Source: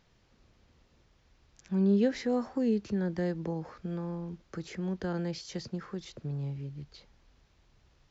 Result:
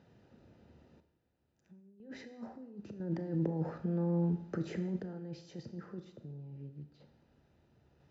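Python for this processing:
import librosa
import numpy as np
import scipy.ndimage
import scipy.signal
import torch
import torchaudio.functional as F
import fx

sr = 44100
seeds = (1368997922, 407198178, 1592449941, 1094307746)

y = fx.notch_comb(x, sr, f0_hz=1100.0)
y = fx.over_compress(y, sr, threshold_db=-39.0, ratio=-1.0)
y = scipy.signal.sosfilt(scipy.signal.butter(2, 81.0, 'highpass', fs=sr, output='sos'), y)
y = fx.tilt_shelf(y, sr, db=5.5, hz=900.0)
y = fx.tremolo_random(y, sr, seeds[0], hz=1.0, depth_pct=85)
y = fx.high_shelf(y, sr, hz=5000.0, db=-10.5)
y = fx.rev_schroeder(y, sr, rt60_s=0.81, comb_ms=27, drr_db=9.0)
y = F.gain(torch.from_numpy(y), -1.5).numpy()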